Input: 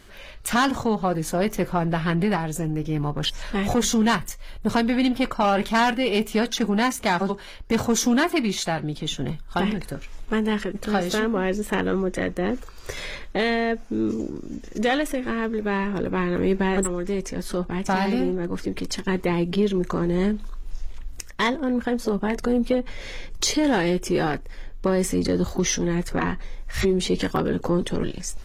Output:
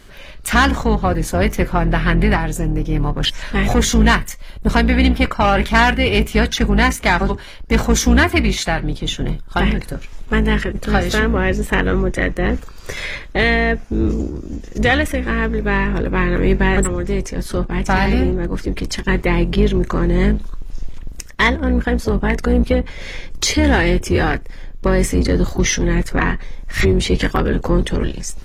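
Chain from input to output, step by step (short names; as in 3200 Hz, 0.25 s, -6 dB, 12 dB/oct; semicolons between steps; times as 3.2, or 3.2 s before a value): octaver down 2 oct, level +3 dB; dynamic EQ 2000 Hz, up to +7 dB, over -41 dBFS, Q 1.3; gain +4 dB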